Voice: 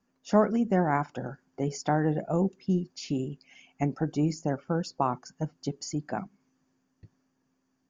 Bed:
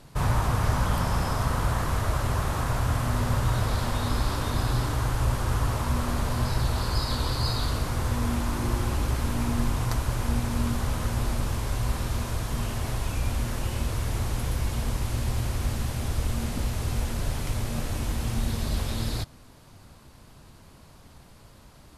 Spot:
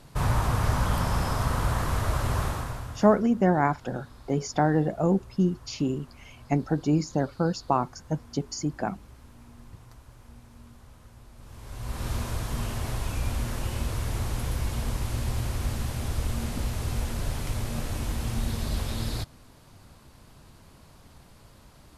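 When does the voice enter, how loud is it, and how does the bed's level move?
2.70 s, +3.0 dB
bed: 0:02.45 −0.5 dB
0:03.29 −23.5 dB
0:11.32 −23.5 dB
0:12.08 −1.5 dB

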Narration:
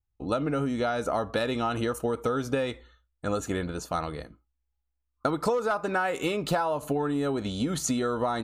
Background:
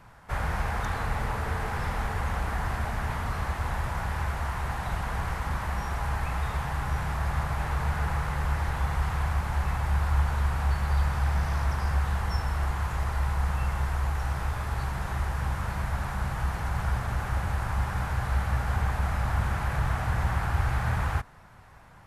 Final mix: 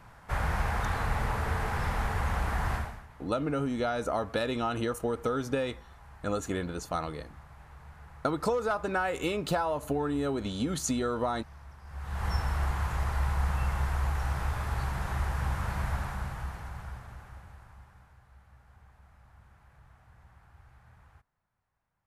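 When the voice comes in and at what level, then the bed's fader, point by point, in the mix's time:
3.00 s, −2.5 dB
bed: 0:02.76 −0.5 dB
0:03.08 −22 dB
0:11.83 −22 dB
0:12.26 −1.5 dB
0:15.91 −1.5 dB
0:18.26 −30.5 dB

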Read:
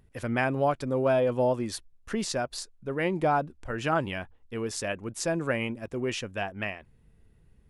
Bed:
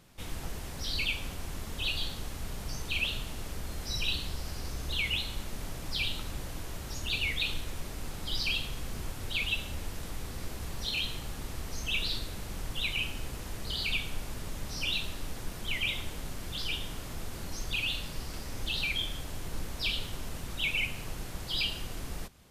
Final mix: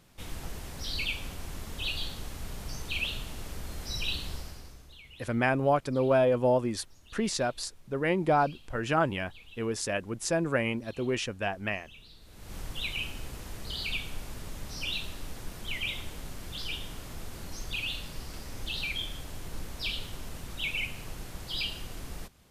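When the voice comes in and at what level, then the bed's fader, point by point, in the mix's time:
5.05 s, +0.5 dB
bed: 0:04.36 −1 dB
0:05.03 −21.5 dB
0:12.15 −21.5 dB
0:12.55 −2 dB

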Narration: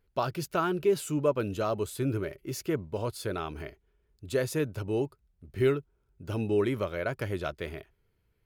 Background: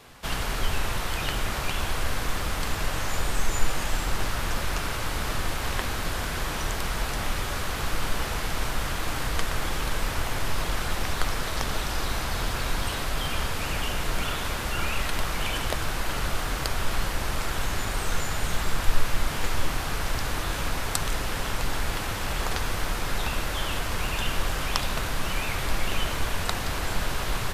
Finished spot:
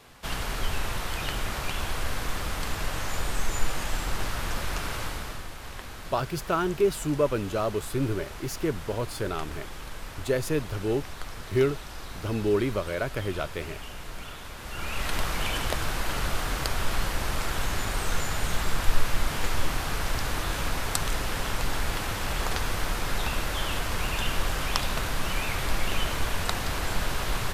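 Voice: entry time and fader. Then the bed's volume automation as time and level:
5.95 s, +2.0 dB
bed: 0:05.02 −2.5 dB
0:05.49 −11.5 dB
0:14.54 −11.5 dB
0:15.12 −0.5 dB

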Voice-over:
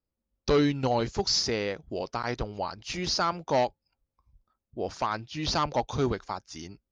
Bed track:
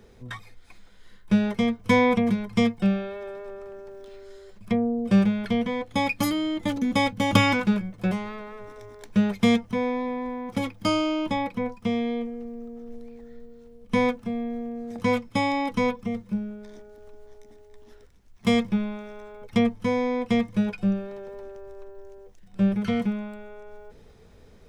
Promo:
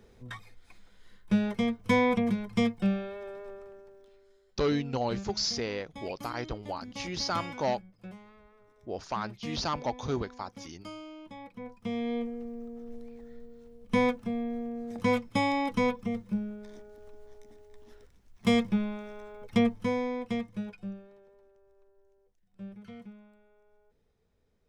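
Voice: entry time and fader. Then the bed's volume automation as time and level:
4.10 s, −4.5 dB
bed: 0:03.50 −5 dB
0:04.46 −20 dB
0:11.33 −20 dB
0:12.16 −3 dB
0:19.73 −3 dB
0:21.46 −21.5 dB

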